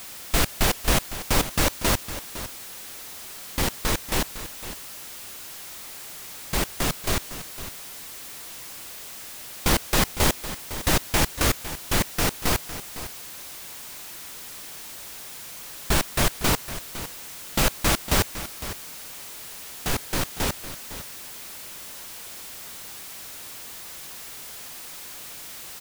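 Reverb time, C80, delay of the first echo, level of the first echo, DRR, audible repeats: no reverb audible, no reverb audible, 507 ms, −13.0 dB, no reverb audible, 1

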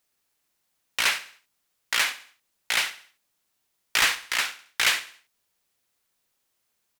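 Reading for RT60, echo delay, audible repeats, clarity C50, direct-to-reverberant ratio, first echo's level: no reverb audible, 68 ms, 3, no reverb audible, no reverb audible, −15.0 dB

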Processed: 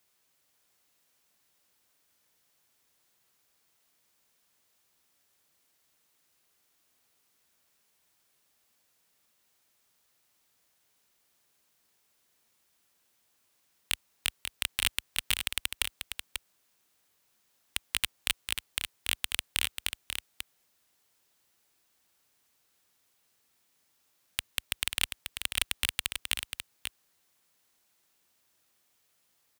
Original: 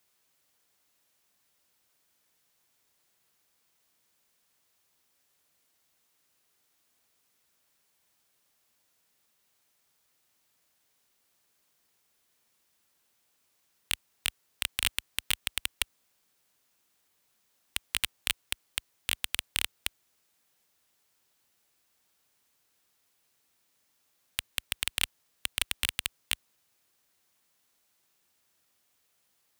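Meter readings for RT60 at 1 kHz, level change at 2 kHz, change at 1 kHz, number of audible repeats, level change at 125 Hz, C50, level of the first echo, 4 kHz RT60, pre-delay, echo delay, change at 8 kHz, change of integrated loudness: no reverb audible, +1.0 dB, +1.0 dB, 1, +0.5 dB, no reverb audible, −7.0 dB, no reverb audible, no reverb audible, 540 ms, +1.0 dB, 0.0 dB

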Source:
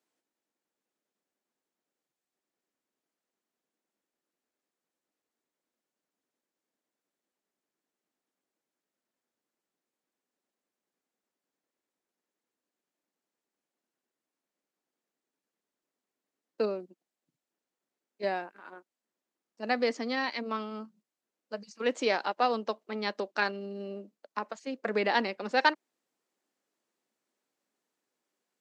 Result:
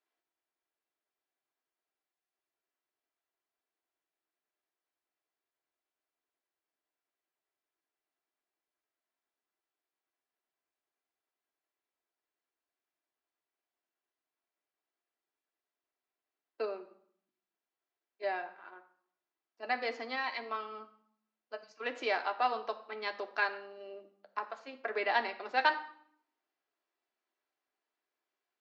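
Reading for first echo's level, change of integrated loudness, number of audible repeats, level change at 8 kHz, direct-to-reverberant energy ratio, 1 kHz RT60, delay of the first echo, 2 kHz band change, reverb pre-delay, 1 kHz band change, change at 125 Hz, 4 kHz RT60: no echo audible, −3.5 dB, no echo audible, below −10 dB, 4.5 dB, 0.65 s, no echo audible, −2.0 dB, 3 ms, −2.0 dB, can't be measured, 0.55 s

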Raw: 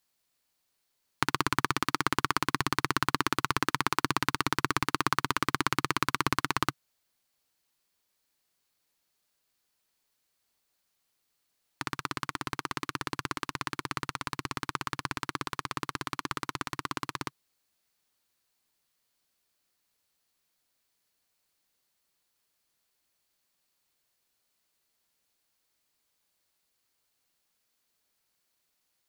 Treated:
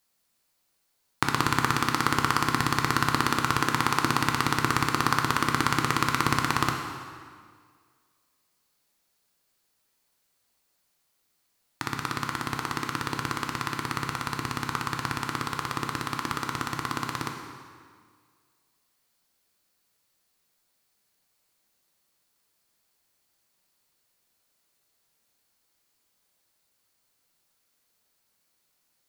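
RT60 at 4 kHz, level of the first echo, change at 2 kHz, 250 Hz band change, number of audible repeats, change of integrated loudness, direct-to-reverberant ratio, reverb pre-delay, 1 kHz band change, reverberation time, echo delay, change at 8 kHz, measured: 1.6 s, no echo audible, +4.0 dB, +5.0 dB, no echo audible, +4.5 dB, 2.5 dB, 8 ms, +4.5 dB, 1.9 s, no echo audible, +4.5 dB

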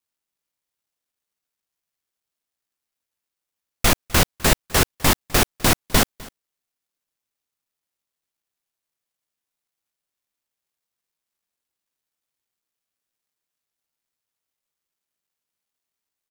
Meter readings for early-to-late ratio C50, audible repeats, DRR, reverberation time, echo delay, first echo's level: no reverb audible, 1, no reverb audible, no reverb audible, 254 ms, −22.5 dB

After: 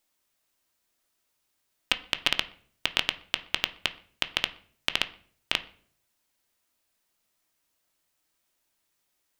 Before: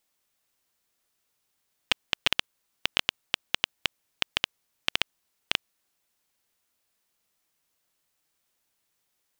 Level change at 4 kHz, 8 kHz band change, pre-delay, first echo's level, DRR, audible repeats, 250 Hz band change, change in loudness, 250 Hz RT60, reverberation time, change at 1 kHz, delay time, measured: +0.5 dB, 0.0 dB, 3 ms, no echo audible, 8.5 dB, no echo audible, +1.0 dB, +0.5 dB, 0.65 s, 0.50 s, +0.5 dB, no echo audible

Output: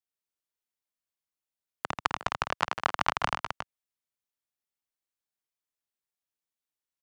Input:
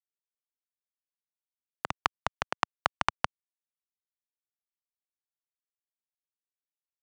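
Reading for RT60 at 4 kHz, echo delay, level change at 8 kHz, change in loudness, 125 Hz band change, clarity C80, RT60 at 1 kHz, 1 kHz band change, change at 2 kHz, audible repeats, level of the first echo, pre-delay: no reverb audible, 83 ms, +2.0 dB, +1.5 dB, +2.5 dB, no reverb audible, no reverb audible, +2.0 dB, +2.0 dB, 4, −5.5 dB, no reverb audible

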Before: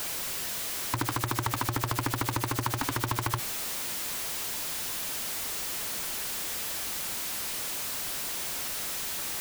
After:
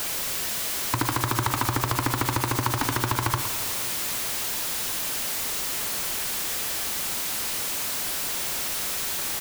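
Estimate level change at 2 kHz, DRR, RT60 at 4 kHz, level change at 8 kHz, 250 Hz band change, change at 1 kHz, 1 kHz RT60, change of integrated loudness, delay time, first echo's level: +5.0 dB, 8.0 dB, 2.3 s, +5.0 dB, +4.5 dB, +5.0 dB, 2.5 s, +5.0 dB, 114 ms, −12.5 dB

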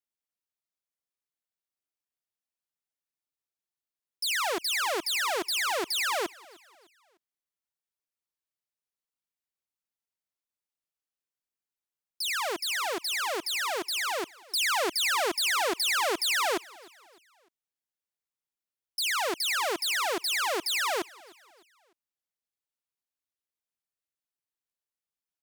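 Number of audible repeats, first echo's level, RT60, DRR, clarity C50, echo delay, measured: 2, −23.0 dB, no reverb audible, no reverb audible, no reverb audible, 303 ms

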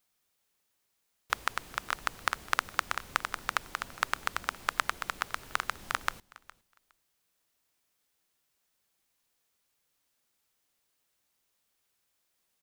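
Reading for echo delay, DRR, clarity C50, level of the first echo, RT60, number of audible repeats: 412 ms, no reverb audible, no reverb audible, −21.5 dB, no reverb audible, 1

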